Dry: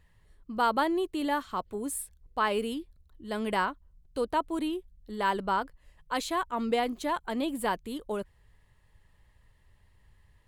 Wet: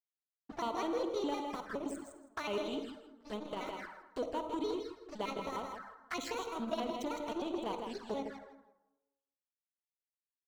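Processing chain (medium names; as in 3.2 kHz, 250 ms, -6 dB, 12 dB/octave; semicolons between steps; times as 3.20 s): pitch shift switched off and on +5.5 st, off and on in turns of 103 ms; steep low-pass 8.4 kHz 96 dB/octave; bass shelf 68 Hz -7.5 dB; crossover distortion -43 dBFS; compression 2.5:1, threshold -37 dBFS, peak gain reduction 10.5 dB; feedback delay 161 ms, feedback 17%, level -7 dB; on a send at -7.5 dB: reverberation RT60 0.95 s, pre-delay 42 ms; on the sum: touch-sensitive flanger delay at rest 7.2 ms, full sweep at -35.5 dBFS; transformer saturation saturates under 480 Hz; trim +3.5 dB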